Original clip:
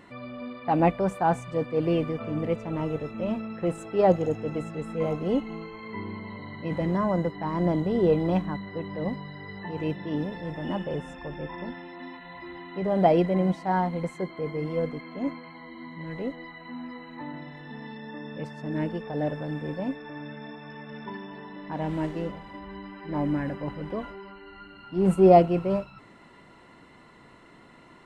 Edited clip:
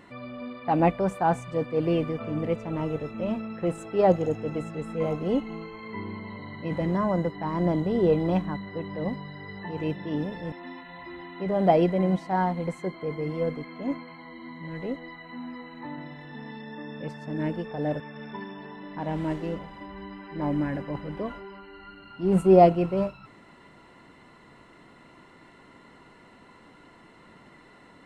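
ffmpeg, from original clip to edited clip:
-filter_complex "[0:a]asplit=3[a][b][c];[a]atrim=end=10.522[d];[b]atrim=start=11.878:end=19.362[e];[c]atrim=start=20.728[f];[d][e]acrossfade=d=0.004:c1=hsin:c2=hsin[g];[g][f]acrossfade=d=0.004:c1=hsin:c2=hsin"

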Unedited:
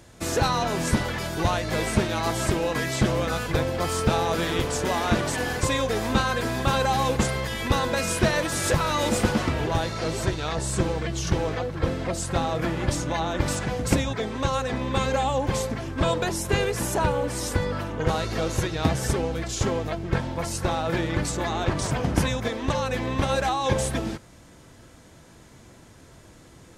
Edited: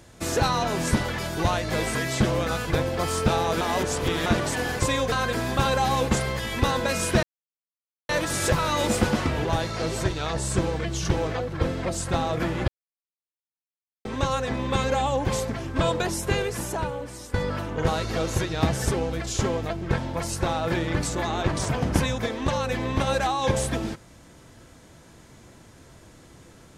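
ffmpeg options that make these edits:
-filter_complex "[0:a]asplit=9[a][b][c][d][e][f][g][h][i];[a]atrim=end=1.952[j];[b]atrim=start=2.758:end=4.422[k];[c]atrim=start=4.418:end=5.072,asetpts=PTS-STARTPTS,areverse[l];[d]atrim=start=5.068:end=5.932[m];[e]atrim=start=6.198:end=8.31,asetpts=PTS-STARTPTS,afade=t=out:st=2.108:d=0.004:c=hsin,apad=pad_dur=0.86[n];[f]atrim=start=8.31:end=12.9,asetpts=PTS-STARTPTS,afade=t=in:d=0.004:c=hsin,afade=t=out:st=4.586:d=0.004:c=hsin[o];[g]atrim=start=12.9:end=14.27,asetpts=PTS-STARTPTS,volume=0[p];[h]atrim=start=14.27:end=17.56,asetpts=PTS-STARTPTS,afade=t=in:d=0.004:c=hsin,afade=t=out:st=2.06:d=1.23:silence=0.199526[q];[i]atrim=start=17.56,asetpts=PTS-STARTPTS,afade=t=in:d=0.004:c=hsin:silence=0.199526[r];[j][k]acrossfade=d=0.004:c1=hsin:c2=hsin[s];[s][l]acrossfade=d=0.004:c1=hsin:c2=hsin[t];[t][m]acrossfade=d=0.004:c1=hsin:c2=hsin[u];[n][o][p][q][r]concat=n=5:v=0:a=1[v];[u][v]acrossfade=d=0.004:c1=hsin:c2=hsin"

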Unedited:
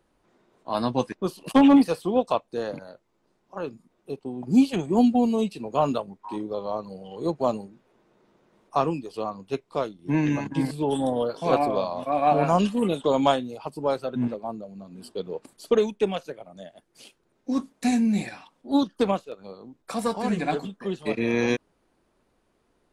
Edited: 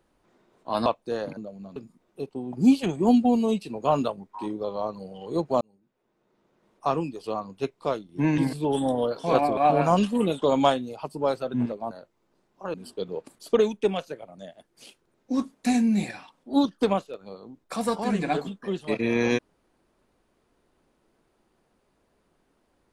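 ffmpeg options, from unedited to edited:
-filter_complex "[0:a]asplit=9[a][b][c][d][e][f][g][h][i];[a]atrim=end=0.862[j];[b]atrim=start=2.318:end=2.832[k];[c]atrim=start=14.528:end=14.922[l];[d]atrim=start=3.658:end=7.51,asetpts=PTS-STARTPTS,afade=t=out:st=3.848:d=0.004:c=hsin[m];[e]atrim=start=7.51:end=10.282,asetpts=PTS-STARTPTS,afade=t=in:d=1.63[n];[f]atrim=start=10.558:end=11.752[o];[g]atrim=start=12.188:end=14.532[p];[h]atrim=start=2.828:end=3.662[q];[i]atrim=start=14.918[r];[j][k]acrossfade=d=0.004:c1=hsin:c2=hsin[s];[s][l]acrossfade=d=0.004:c1=hsin:c2=hsin[t];[m][n]concat=n=2:v=0:a=1[u];[t][u]acrossfade=d=0.004:c1=hsin:c2=hsin[v];[v][o]acrossfade=d=0.004:c1=hsin:c2=hsin[w];[w][p]acrossfade=d=0.004:c1=hsin:c2=hsin[x];[x][q]acrossfade=d=0.004:c1=hsin:c2=hsin[y];[y][r]acrossfade=d=0.004:c1=hsin:c2=hsin"

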